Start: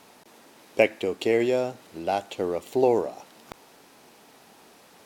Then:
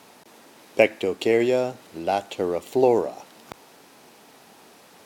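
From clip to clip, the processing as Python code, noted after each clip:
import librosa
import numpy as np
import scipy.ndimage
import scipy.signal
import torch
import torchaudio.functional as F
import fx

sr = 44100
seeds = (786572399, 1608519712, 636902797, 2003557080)

y = scipy.signal.sosfilt(scipy.signal.butter(2, 62.0, 'highpass', fs=sr, output='sos'), x)
y = F.gain(torch.from_numpy(y), 2.5).numpy()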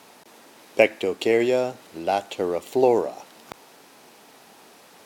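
y = fx.low_shelf(x, sr, hz=230.0, db=-4.5)
y = F.gain(torch.from_numpy(y), 1.0).numpy()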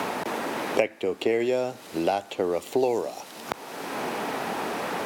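y = fx.band_squash(x, sr, depth_pct=100)
y = F.gain(torch.from_numpy(y), -2.5).numpy()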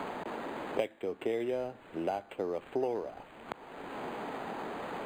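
y = np.interp(np.arange(len(x)), np.arange(len(x))[::8], x[::8])
y = F.gain(torch.from_numpy(y), -8.5).numpy()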